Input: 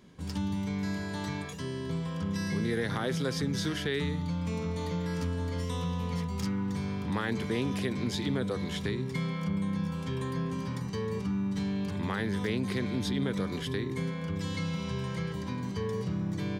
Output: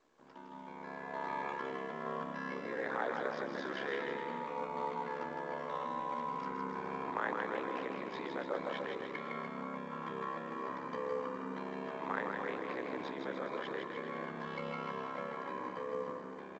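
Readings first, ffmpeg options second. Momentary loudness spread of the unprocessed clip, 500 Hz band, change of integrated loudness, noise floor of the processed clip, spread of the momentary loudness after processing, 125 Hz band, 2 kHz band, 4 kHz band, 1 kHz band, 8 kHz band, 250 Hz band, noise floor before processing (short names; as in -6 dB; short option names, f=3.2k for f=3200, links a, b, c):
4 LU, -3.0 dB, -7.0 dB, -48 dBFS, 5 LU, -22.0 dB, -2.5 dB, -13.0 dB, +3.5 dB, under -20 dB, -13.0 dB, -36 dBFS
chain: -filter_complex "[0:a]dynaudnorm=f=280:g=9:m=15dB,afreqshift=31,lowpass=1.1k,alimiter=limit=-15.5dB:level=0:latency=1:release=178,aeval=exprs='val(0)*sin(2*PI*34*n/s)':c=same,highpass=780,asplit=2[a][b];[b]aecho=0:1:160|296|411.6|509.9|593.4:0.631|0.398|0.251|0.158|0.1[c];[a][c]amix=inputs=2:normalize=0,volume=-1.5dB" -ar 16000 -c:a pcm_mulaw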